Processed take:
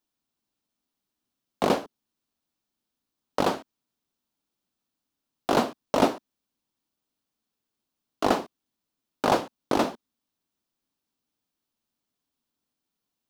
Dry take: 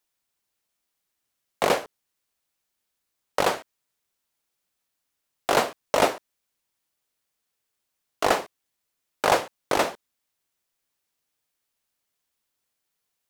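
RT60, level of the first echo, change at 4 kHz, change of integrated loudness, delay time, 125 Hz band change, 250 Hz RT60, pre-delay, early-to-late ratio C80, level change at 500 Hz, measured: none, none, -4.0 dB, -1.5 dB, none, +3.0 dB, none, none, none, -1.5 dB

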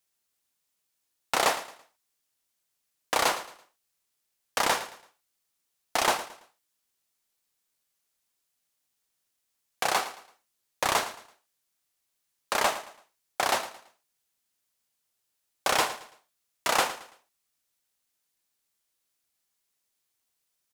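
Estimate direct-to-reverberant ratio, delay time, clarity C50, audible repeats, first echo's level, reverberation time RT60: none, 0.111 s, none, 3, -14.5 dB, none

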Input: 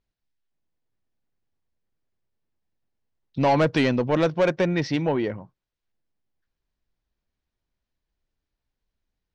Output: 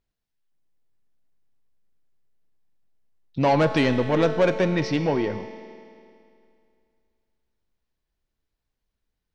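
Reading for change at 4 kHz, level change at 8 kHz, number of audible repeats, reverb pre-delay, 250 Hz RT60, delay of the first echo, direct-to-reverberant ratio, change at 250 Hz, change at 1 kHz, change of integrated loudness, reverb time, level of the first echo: +0.5 dB, n/a, none, 5 ms, 2.4 s, none, 7.0 dB, +0.5 dB, +0.5 dB, +0.5 dB, 2.4 s, none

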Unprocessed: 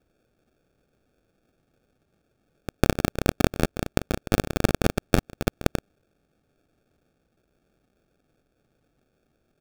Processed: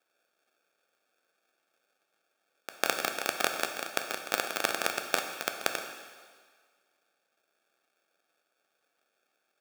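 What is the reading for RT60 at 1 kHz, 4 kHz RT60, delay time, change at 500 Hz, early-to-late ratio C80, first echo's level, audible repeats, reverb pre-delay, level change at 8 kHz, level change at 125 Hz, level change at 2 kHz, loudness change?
1.7 s, 1.7 s, none, -8.5 dB, 8.0 dB, none, none, 8 ms, +1.0 dB, -31.0 dB, +1.0 dB, -5.5 dB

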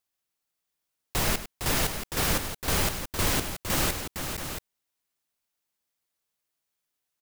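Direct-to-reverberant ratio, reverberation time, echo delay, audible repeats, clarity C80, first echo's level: none, none, 0.1 s, 3, none, -13.0 dB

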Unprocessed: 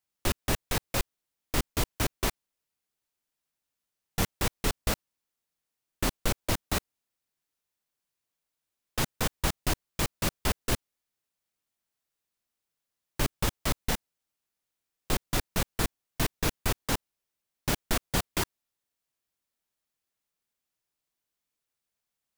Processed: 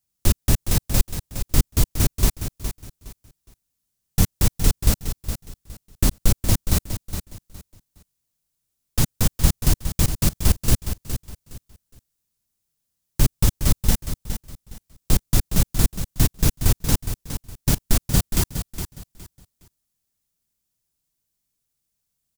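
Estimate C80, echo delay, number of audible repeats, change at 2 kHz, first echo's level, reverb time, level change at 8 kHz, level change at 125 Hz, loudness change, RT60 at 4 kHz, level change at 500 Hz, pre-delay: none, 0.414 s, 3, -0.5 dB, -9.5 dB, none, +8.5 dB, +13.0 dB, +8.0 dB, none, +1.5 dB, none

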